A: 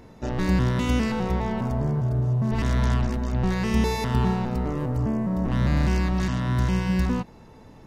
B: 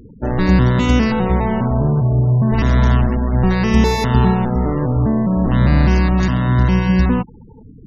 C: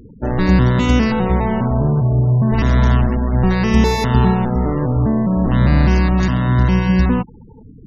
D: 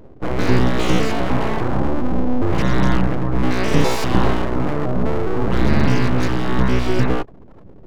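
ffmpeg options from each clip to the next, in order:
ffmpeg -i in.wav -af "afftfilt=real='re*gte(hypot(re,im),0.0141)':imag='im*gte(hypot(re,im),0.0141)':win_size=1024:overlap=0.75,volume=9dB" out.wav
ffmpeg -i in.wav -af anull out.wav
ffmpeg -i in.wav -af "aeval=exprs='abs(val(0))':channel_layout=same" out.wav

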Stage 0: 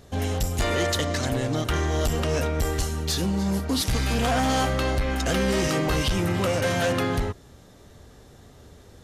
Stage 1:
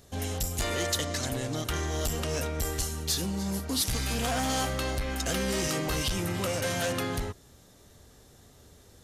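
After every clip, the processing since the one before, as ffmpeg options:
ffmpeg -i in.wav -af "highshelf=frequency=4600:gain=10.5,volume=-7dB" out.wav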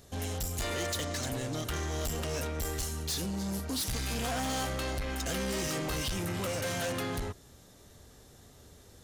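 ffmpeg -i in.wav -af "asoftclip=type=tanh:threshold=-29.5dB" out.wav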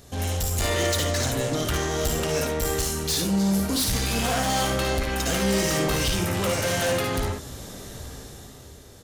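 ffmpeg -i in.wav -filter_complex "[0:a]dynaudnorm=framelen=110:gausssize=17:maxgain=10dB,alimiter=level_in=4dB:limit=-24dB:level=0:latency=1:release=23,volume=-4dB,asplit=2[link_01][link_02];[link_02]aecho=0:1:56|71:0.501|0.422[link_03];[link_01][link_03]amix=inputs=2:normalize=0,volume=6dB" out.wav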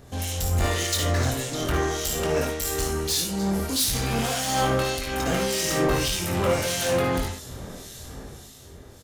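ffmpeg -i in.wav -filter_complex "[0:a]acrusher=bits=11:mix=0:aa=0.000001,acrossover=split=2300[link_01][link_02];[link_01]aeval=exprs='val(0)*(1-0.7/2+0.7/2*cos(2*PI*1.7*n/s))':channel_layout=same[link_03];[link_02]aeval=exprs='val(0)*(1-0.7/2-0.7/2*cos(2*PI*1.7*n/s))':channel_layout=same[link_04];[link_03][link_04]amix=inputs=2:normalize=0,asplit=2[link_05][link_06];[link_06]adelay=23,volume=-7dB[link_07];[link_05][link_07]amix=inputs=2:normalize=0,volume=2dB" out.wav

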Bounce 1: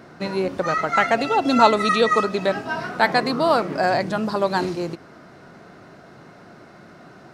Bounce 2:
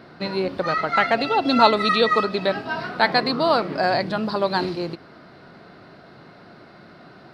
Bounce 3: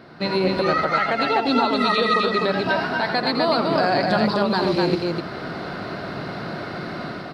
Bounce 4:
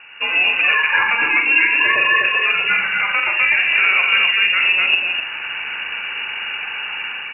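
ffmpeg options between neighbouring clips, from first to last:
ffmpeg -i in.wav -af "highshelf=frequency=5400:width_type=q:width=3:gain=-6.5,volume=-1dB" out.wav
ffmpeg -i in.wav -af "dynaudnorm=framelen=130:gausssize=5:maxgain=13.5dB,alimiter=limit=-11.5dB:level=0:latency=1:release=188,aecho=1:1:84.55|250.7:0.398|0.708" out.wav
ffmpeg -i in.wav -filter_complex "[0:a]asplit=2[link_01][link_02];[link_02]adelay=44,volume=-6dB[link_03];[link_01][link_03]amix=inputs=2:normalize=0,lowpass=frequency=2600:width_type=q:width=0.5098,lowpass=frequency=2600:width_type=q:width=0.6013,lowpass=frequency=2600:width_type=q:width=0.9,lowpass=frequency=2600:width_type=q:width=2.563,afreqshift=-3000,volume=3.5dB" out.wav

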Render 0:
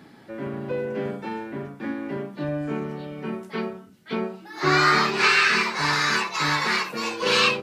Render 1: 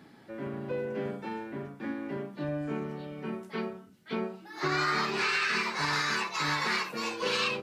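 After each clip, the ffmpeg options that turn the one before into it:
ffmpeg -i in.wav -af "alimiter=limit=-14dB:level=0:latency=1:release=71,volume=-5.5dB" out.wav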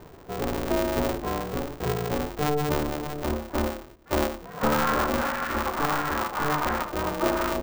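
ffmpeg -i in.wav -af "lowpass=frequency=1200:width=0.5412,lowpass=frequency=1200:width=1.3066,aeval=exprs='val(0)*sgn(sin(2*PI*150*n/s))':channel_layout=same,volume=8.5dB" out.wav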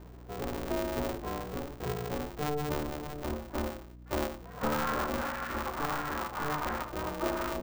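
ffmpeg -i in.wav -af "aeval=exprs='val(0)+0.00891*(sin(2*PI*60*n/s)+sin(2*PI*2*60*n/s)/2+sin(2*PI*3*60*n/s)/3+sin(2*PI*4*60*n/s)/4+sin(2*PI*5*60*n/s)/5)':channel_layout=same,volume=-7.5dB" out.wav

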